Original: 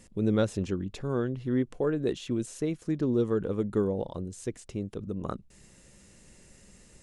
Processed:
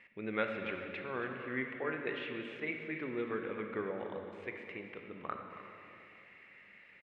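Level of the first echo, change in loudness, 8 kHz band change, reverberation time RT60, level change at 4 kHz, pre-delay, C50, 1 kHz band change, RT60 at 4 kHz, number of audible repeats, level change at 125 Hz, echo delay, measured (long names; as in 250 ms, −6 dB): −13.0 dB, −9.0 dB, below −30 dB, 2.7 s, −4.5 dB, 19 ms, 3.5 dB, 0.0 dB, 2.2 s, 1, −18.5 dB, 276 ms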